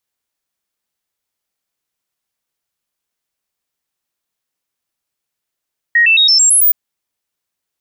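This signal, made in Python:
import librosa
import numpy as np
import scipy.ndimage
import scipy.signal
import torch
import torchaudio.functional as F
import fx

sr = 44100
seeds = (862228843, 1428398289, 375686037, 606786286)

y = fx.stepped_sweep(sr, from_hz=1880.0, direction='up', per_octave=2, tones=7, dwell_s=0.11, gap_s=0.0, level_db=-6.5)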